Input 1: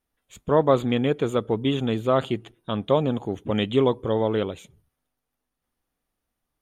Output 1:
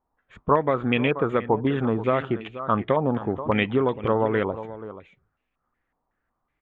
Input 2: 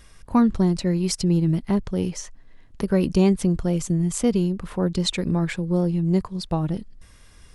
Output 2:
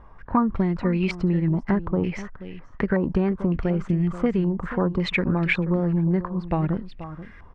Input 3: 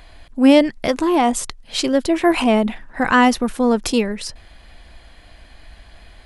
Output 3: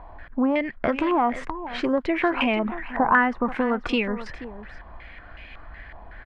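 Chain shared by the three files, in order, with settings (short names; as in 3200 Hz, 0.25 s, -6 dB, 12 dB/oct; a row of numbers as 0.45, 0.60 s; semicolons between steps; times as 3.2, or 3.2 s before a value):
compressor 12:1, threshold -20 dBFS; echo 0.482 s -14 dB; stepped low-pass 5.4 Hz 950–2500 Hz; match loudness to -24 LUFS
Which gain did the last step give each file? +2.0, +2.0, 0.0 dB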